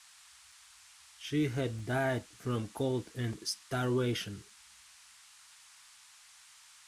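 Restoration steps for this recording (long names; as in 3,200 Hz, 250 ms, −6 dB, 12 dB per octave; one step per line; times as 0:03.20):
repair the gap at 0:00.52/0:01.79/0:03.08/0:04.50, 2.6 ms
noise reduction from a noise print 22 dB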